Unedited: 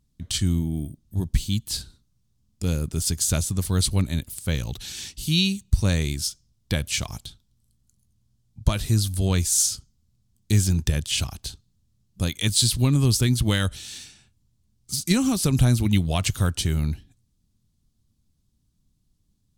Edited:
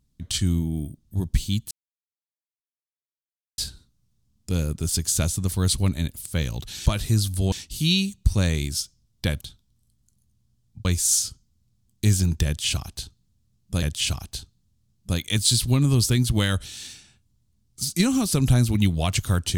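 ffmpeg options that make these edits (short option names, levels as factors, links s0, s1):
-filter_complex "[0:a]asplit=7[s0][s1][s2][s3][s4][s5][s6];[s0]atrim=end=1.71,asetpts=PTS-STARTPTS,afade=t=out:st=1.706:d=0.004:c=hsin,apad=pad_dur=1.87[s7];[s1]atrim=start=1.71:end=4.992,asetpts=PTS-STARTPTS,afade=t=in:d=0.004:c=hsin[s8];[s2]atrim=start=8.658:end=9.322[s9];[s3]atrim=start=4.988:end=6.882[s10];[s4]atrim=start=7.218:end=8.662[s11];[s5]atrim=start=9.318:end=12.292[s12];[s6]atrim=start=10.928[s13];[s7][s8]concat=n=2:v=0:a=1[s14];[s14][s9]acrossfade=d=0.004:c1=hsin:c2=hsin[s15];[s15][s10]acrossfade=d=0.004:c1=hsin:c2=hsin[s16];[s16][s11]acrossfade=d=0.004:c1=hsin:c2=hsin[s17];[s17][s12]acrossfade=d=0.004:c1=hsin:c2=hsin[s18];[s18][s13]acrossfade=d=0.004:c1=hsin:c2=hsin"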